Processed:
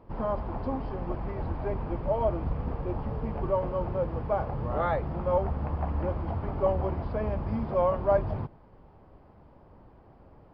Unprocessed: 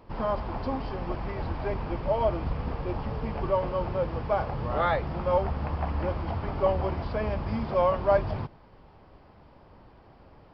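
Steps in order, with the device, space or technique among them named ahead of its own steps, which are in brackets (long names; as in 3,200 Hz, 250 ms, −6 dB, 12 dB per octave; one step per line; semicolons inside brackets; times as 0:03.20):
through cloth (high-shelf EQ 2,100 Hz −15.5 dB)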